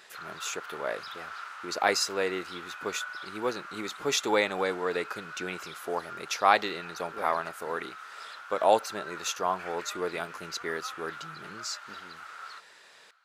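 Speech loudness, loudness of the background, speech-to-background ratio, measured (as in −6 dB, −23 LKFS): −31.0 LKFS, −42.0 LKFS, 11.0 dB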